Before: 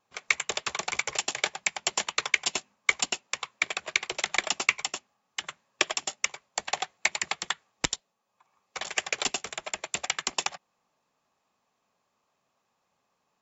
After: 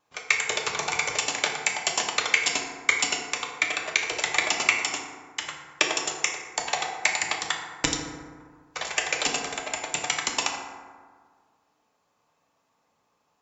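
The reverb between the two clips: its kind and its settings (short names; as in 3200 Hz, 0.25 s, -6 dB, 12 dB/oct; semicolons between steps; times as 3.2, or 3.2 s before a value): FDN reverb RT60 1.7 s, low-frequency decay 1.1×, high-frequency decay 0.4×, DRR 0 dB; gain +1.5 dB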